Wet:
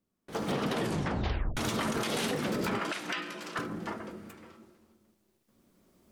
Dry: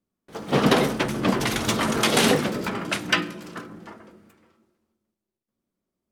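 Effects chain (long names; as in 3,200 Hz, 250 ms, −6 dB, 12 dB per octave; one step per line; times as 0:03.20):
camcorder AGC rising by 6.5 dB per second
0:00.73: tape stop 0.84 s
0:02.79–0:03.59: meter weighting curve A
downward compressor 6 to 1, threshold −25 dBFS, peak gain reduction 11.5 dB
brickwall limiter −22 dBFS, peak gain reduction 10.5 dB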